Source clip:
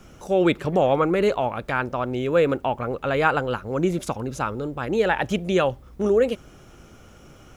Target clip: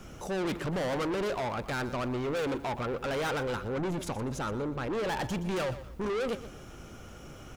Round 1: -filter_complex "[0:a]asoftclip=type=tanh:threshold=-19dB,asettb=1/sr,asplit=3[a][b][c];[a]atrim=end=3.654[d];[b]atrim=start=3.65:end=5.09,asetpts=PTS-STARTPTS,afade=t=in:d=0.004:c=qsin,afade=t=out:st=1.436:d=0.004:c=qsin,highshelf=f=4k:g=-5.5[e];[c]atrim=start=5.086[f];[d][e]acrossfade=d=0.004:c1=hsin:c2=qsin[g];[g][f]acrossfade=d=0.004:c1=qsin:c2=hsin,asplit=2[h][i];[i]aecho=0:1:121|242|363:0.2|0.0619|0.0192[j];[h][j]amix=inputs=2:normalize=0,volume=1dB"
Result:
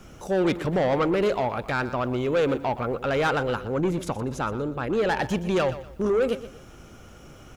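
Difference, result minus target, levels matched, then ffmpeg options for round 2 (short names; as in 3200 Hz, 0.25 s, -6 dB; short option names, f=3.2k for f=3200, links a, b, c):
soft clip: distortion -7 dB
-filter_complex "[0:a]asoftclip=type=tanh:threshold=-30.5dB,asettb=1/sr,asplit=3[a][b][c];[a]atrim=end=3.654[d];[b]atrim=start=3.65:end=5.09,asetpts=PTS-STARTPTS,afade=t=in:d=0.004:c=qsin,afade=t=out:st=1.436:d=0.004:c=qsin,highshelf=f=4k:g=-5.5[e];[c]atrim=start=5.086[f];[d][e]acrossfade=d=0.004:c1=hsin:c2=qsin[g];[g][f]acrossfade=d=0.004:c1=qsin:c2=hsin,asplit=2[h][i];[i]aecho=0:1:121|242|363:0.2|0.0619|0.0192[j];[h][j]amix=inputs=2:normalize=0,volume=1dB"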